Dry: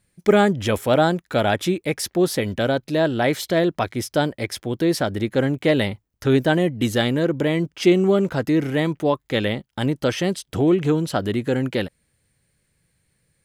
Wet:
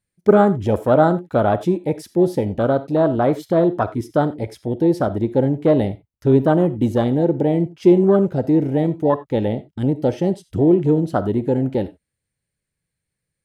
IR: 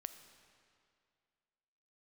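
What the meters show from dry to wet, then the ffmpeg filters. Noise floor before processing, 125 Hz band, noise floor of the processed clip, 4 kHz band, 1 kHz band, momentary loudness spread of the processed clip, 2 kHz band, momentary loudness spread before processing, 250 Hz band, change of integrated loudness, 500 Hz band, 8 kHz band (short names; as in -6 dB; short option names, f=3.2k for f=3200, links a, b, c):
-71 dBFS, +3.0 dB, -81 dBFS, under -10 dB, +3.0 dB, 8 LU, -7.5 dB, 7 LU, +3.0 dB, +2.5 dB, +3.0 dB, under -10 dB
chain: -filter_complex "[0:a]afwtdn=0.0794[a];[1:a]atrim=start_sample=2205,atrim=end_sample=4410[b];[a][b]afir=irnorm=-1:irlink=0,volume=7.5dB"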